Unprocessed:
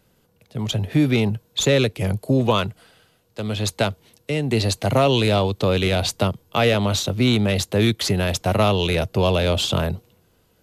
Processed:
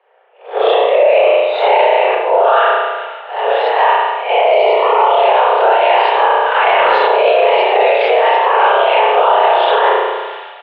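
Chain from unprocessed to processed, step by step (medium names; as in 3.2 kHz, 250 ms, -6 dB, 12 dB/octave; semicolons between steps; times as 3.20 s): reverse spectral sustain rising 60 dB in 0.41 s; whisper effect; mistuned SSB +270 Hz 170–2600 Hz; doubling 30 ms -10 dB; feedback echo behind a high-pass 142 ms, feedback 77%, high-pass 1.5 kHz, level -20 dB; level rider gain up to 13.5 dB; 4.46–5.10 s: Butterworth band-stop 1.6 kHz, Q 4.2; 6.45–7.03 s: transient shaper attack -5 dB, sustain +7 dB; spring tank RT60 1 s, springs 33 ms, chirp 75 ms, DRR -5 dB; loudness maximiser +3.5 dB; decay stretcher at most 38 dB/s; trim -1.5 dB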